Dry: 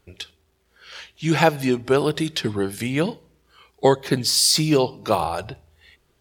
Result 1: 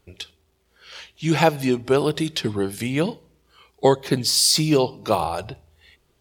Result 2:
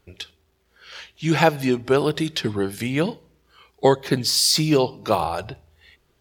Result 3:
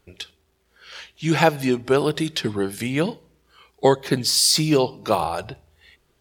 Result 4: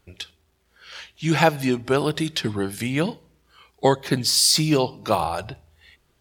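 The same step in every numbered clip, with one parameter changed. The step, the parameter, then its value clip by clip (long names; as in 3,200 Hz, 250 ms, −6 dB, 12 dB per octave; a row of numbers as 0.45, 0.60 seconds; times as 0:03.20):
parametric band, centre frequency: 1,600, 9,000, 92, 420 Hertz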